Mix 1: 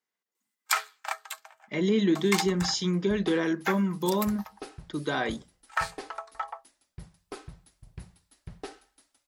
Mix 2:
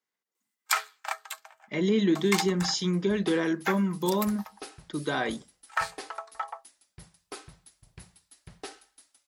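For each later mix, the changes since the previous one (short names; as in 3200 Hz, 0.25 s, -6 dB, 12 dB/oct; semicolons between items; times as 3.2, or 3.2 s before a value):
second sound: add tilt +2 dB/oct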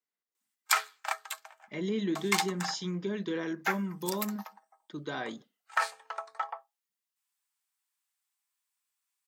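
speech -7.5 dB; second sound: muted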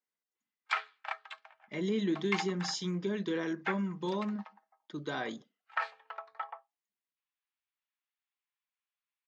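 background: add ladder low-pass 3900 Hz, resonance 25%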